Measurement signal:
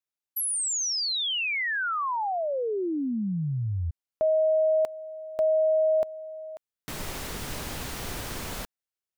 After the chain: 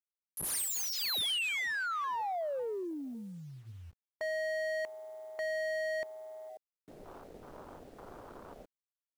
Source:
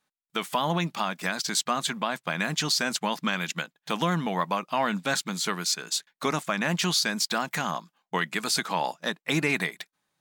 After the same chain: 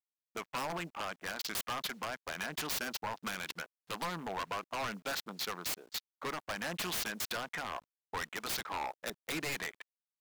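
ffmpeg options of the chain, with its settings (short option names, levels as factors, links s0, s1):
-af "bandreject=f=60:t=h:w=6,bandreject=f=120:t=h:w=6,afwtdn=0.0178,bass=f=250:g=-14,treble=f=4000:g=10,adynamicsmooth=sensitivity=4.5:basefreq=1400,aresample=32000,aresample=44100,acrusher=bits=9:mix=0:aa=0.000001,aeval=exprs='0.0631*(abs(mod(val(0)/0.0631+3,4)-2)-1)':c=same,volume=0.501"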